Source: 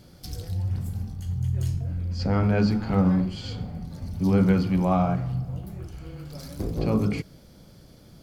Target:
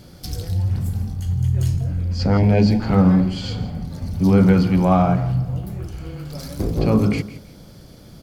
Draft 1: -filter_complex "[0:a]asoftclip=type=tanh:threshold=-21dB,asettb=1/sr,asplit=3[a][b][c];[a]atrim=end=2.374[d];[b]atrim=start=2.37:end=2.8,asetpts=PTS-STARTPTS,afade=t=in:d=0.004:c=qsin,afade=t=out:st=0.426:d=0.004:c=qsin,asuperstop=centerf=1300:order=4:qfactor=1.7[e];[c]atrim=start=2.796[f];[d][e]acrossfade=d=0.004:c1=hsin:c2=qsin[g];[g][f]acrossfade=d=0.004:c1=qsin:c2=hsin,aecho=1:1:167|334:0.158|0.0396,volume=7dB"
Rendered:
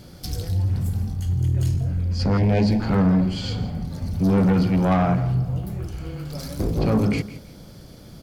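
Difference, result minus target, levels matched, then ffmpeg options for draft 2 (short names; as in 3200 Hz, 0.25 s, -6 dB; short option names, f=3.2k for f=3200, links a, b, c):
soft clip: distortion +17 dB
-filter_complex "[0:a]asoftclip=type=tanh:threshold=-9dB,asettb=1/sr,asplit=3[a][b][c];[a]atrim=end=2.374[d];[b]atrim=start=2.37:end=2.8,asetpts=PTS-STARTPTS,afade=t=in:d=0.004:c=qsin,afade=t=out:st=0.426:d=0.004:c=qsin,asuperstop=centerf=1300:order=4:qfactor=1.7[e];[c]atrim=start=2.796[f];[d][e]acrossfade=d=0.004:c1=hsin:c2=qsin[g];[g][f]acrossfade=d=0.004:c1=qsin:c2=hsin,aecho=1:1:167|334:0.158|0.0396,volume=7dB"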